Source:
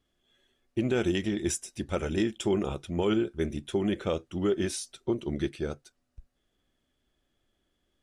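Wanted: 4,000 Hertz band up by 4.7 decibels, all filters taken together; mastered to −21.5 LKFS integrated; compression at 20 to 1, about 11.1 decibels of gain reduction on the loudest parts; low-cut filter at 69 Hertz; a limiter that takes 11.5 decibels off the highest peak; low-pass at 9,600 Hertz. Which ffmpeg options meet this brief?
ffmpeg -i in.wav -af "highpass=69,lowpass=9600,equalizer=frequency=4000:width_type=o:gain=6.5,acompressor=threshold=-33dB:ratio=20,volume=21.5dB,alimiter=limit=-11dB:level=0:latency=1" out.wav

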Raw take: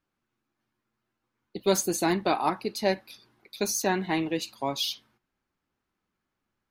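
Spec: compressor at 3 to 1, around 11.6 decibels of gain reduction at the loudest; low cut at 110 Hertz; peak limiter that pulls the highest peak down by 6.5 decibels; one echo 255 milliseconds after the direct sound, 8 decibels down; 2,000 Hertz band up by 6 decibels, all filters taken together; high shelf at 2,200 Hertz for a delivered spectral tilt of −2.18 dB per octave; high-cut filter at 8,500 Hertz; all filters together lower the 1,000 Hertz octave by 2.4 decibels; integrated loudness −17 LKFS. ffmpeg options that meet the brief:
ffmpeg -i in.wav -af "highpass=110,lowpass=8500,equalizer=frequency=1000:width_type=o:gain=-5.5,equalizer=frequency=2000:width_type=o:gain=6,highshelf=frequency=2200:gain=5.5,acompressor=threshold=-35dB:ratio=3,alimiter=level_in=2dB:limit=-24dB:level=0:latency=1,volume=-2dB,aecho=1:1:255:0.398,volume=20.5dB" out.wav

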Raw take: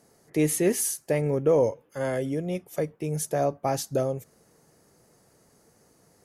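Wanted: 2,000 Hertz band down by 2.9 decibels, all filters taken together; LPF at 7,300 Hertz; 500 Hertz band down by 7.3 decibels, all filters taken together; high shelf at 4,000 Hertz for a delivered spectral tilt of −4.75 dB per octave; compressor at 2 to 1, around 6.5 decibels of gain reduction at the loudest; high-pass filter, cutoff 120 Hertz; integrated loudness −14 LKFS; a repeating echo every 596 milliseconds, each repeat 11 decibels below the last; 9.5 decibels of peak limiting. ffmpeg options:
ffmpeg -i in.wav -af "highpass=120,lowpass=7300,equalizer=frequency=500:width_type=o:gain=-8.5,equalizer=frequency=2000:width_type=o:gain=-4,highshelf=frequency=4000:gain=4.5,acompressor=threshold=-34dB:ratio=2,alimiter=level_in=6.5dB:limit=-24dB:level=0:latency=1,volume=-6.5dB,aecho=1:1:596|1192|1788:0.282|0.0789|0.0221,volume=26.5dB" out.wav

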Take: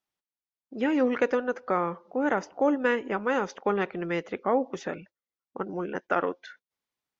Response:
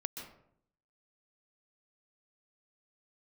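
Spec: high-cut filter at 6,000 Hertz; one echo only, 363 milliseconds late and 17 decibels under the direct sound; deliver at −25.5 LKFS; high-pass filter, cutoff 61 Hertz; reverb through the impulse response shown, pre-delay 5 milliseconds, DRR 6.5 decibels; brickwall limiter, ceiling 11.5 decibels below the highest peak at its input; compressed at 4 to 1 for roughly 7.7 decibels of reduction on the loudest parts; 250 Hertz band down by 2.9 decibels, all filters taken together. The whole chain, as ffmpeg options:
-filter_complex "[0:a]highpass=61,lowpass=6000,equalizer=frequency=250:width_type=o:gain=-3.5,acompressor=threshold=-29dB:ratio=4,alimiter=level_in=4.5dB:limit=-24dB:level=0:latency=1,volume=-4.5dB,aecho=1:1:363:0.141,asplit=2[link_01][link_02];[1:a]atrim=start_sample=2205,adelay=5[link_03];[link_02][link_03]afir=irnorm=-1:irlink=0,volume=-6dB[link_04];[link_01][link_04]amix=inputs=2:normalize=0,volume=13.5dB"

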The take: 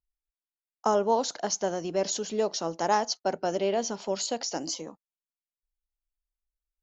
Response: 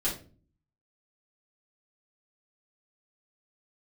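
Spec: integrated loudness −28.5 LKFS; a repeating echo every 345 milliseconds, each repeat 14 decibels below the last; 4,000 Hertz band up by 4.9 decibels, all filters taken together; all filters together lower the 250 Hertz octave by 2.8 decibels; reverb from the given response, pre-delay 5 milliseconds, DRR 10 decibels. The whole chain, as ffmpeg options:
-filter_complex "[0:a]equalizer=frequency=250:width_type=o:gain=-4,equalizer=frequency=4000:width_type=o:gain=6.5,aecho=1:1:345|690:0.2|0.0399,asplit=2[link_01][link_02];[1:a]atrim=start_sample=2205,adelay=5[link_03];[link_02][link_03]afir=irnorm=-1:irlink=0,volume=-16.5dB[link_04];[link_01][link_04]amix=inputs=2:normalize=0,volume=-1dB"

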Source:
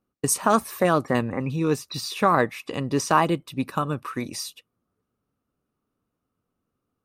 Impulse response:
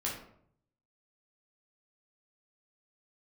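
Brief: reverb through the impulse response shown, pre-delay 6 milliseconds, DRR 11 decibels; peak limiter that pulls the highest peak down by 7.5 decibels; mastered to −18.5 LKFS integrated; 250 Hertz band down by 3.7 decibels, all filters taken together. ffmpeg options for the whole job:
-filter_complex "[0:a]equalizer=frequency=250:width_type=o:gain=-5,alimiter=limit=-13.5dB:level=0:latency=1,asplit=2[link_01][link_02];[1:a]atrim=start_sample=2205,adelay=6[link_03];[link_02][link_03]afir=irnorm=-1:irlink=0,volume=-14.5dB[link_04];[link_01][link_04]amix=inputs=2:normalize=0,volume=9dB"

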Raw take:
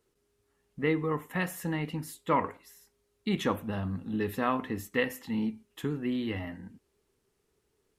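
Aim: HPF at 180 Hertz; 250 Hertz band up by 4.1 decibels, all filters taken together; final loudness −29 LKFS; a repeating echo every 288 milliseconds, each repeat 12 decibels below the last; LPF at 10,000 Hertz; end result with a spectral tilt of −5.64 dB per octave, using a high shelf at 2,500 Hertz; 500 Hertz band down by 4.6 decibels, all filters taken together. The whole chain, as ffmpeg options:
ffmpeg -i in.wav -af "highpass=180,lowpass=10000,equalizer=frequency=250:width_type=o:gain=8.5,equalizer=frequency=500:width_type=o:gain=-8,highshelf=frequency=2500:gain=-3,aecho=1:1:288|576|864:0.251|0.0628|0.0157,volume=2dB" out.wav

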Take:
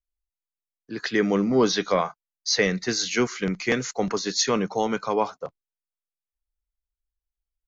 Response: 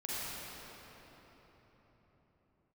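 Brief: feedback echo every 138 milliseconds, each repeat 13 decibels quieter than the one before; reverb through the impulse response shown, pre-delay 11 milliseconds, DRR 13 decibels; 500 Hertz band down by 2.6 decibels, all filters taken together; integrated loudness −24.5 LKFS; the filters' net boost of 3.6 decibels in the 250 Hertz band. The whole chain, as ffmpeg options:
-filter_complex "[0:a]equalizer=frequency=250:width_type=o:gain=6,equalizer=frequency=500:width_type=o:gain=-5.5,aecho=1:1:138|276|414:0.224|0.0493|0.0108,asplit=2[link_01][link_02];[1:a]atrim=start_sample=2205,adelay=11[link_03];[link_02][link_03]afir=irnorm=-1:irlink=0,volume=-17.5dB[link_04];[link_01][link_04]amix=inputs=2:normalize=0,volume=-1dB"

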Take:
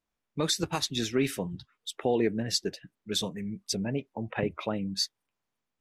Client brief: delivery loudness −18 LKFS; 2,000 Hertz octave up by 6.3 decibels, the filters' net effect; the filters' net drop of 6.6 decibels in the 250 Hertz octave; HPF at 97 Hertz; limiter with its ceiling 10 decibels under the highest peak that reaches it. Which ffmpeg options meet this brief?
ffmpeg -i in.wav -af "highpass=97,equalizer=frequency=250:width_type=o:gain=-9,equalizer=frequency=2000:width_type=o:gain=8,volume=17dB,alimiter=limit=-5dB:level=0:latency=1" out.wav

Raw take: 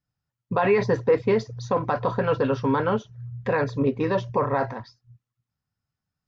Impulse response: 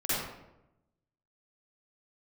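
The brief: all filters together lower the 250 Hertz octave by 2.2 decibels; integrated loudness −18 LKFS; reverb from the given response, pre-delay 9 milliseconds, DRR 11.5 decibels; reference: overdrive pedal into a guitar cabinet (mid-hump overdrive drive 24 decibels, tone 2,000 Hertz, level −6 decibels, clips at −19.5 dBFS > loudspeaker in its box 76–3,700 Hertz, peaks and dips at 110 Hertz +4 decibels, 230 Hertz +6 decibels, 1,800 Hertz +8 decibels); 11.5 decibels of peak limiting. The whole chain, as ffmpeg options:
-filter_complex "[0:a]equalizer=frequency=250:width_type=o:gain=-6,alimiter=limit=-21.5dB:level=0:latency=1,asplit=2[link_01][link_02];[1:a]atrim=start_sample=2205,adelay=9[link_03];[link_02][link_03]afir=irnorm=-1:irlink=0,volume=-20.5dB[link_04];[link_01][link_04]amix=inputs=2:normalize=0,asplit=2[link_05][link_06];[link_06]highpass=frequency=720:poles=1,volume=24dB,asoftclip=type=tanh:threshold=-19.5dB[link_07];[link_05][link_07]amix=inputs=2:normalize=0,lowpass=frequency=2000:poles=1,volume=-6dB,highpass=76,equalizer=frequency=110:width_type=q:width=4:gain=4,equalizer=frequency=230:width_type=q:width=4:gain=6,equalizer=frequency=1800:width_type=q:width=4:gain=8,lowpass=frequency=3700:width=0.5412,lowpass=frequency=3700:width=1.3066,volume=8.5dB"

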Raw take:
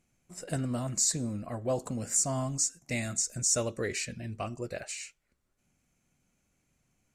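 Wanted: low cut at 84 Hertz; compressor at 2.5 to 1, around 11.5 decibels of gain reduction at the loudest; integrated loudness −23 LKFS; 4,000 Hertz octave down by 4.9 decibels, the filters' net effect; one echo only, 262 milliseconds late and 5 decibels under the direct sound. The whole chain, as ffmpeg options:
ffmpeg -i in.wav -af "highpass=84,equalizer=frequency=4000:width_type=o:gain=-7.5,acompressor=threshold=-43dB:ratio=2.5,aecho=1:1:262:0.562,volume=18dB" out.wav

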